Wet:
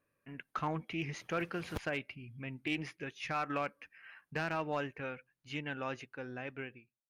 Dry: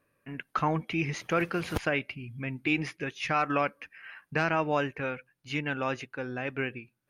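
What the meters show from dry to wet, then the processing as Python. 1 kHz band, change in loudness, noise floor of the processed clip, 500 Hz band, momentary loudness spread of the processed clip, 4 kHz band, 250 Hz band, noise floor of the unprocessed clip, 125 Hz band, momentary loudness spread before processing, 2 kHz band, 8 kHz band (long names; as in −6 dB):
−8.5 dB, −8.5 dB, below −85 dBFS, −8.5 dB, 12 LU, −6.5 dB, −8.5 dB, −78 dBFS, −8.0 dB, 11 LU, −8.5 dB, −8.0 dB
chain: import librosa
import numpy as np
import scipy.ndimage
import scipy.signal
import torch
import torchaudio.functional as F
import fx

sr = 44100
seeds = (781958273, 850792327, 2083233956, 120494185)

y = fx.fade_out_tail(x, sr, length_s=0.7)
y = np.clip(y, -10.0 ** (-18.0 / 20.0), 10.0 ** (-18.0 / 20.0))
y = fx.doppler_dist(y, sr, depth_ms=0.13)
y = F.gain(torch.from_numpy(y), -8.0).numpy()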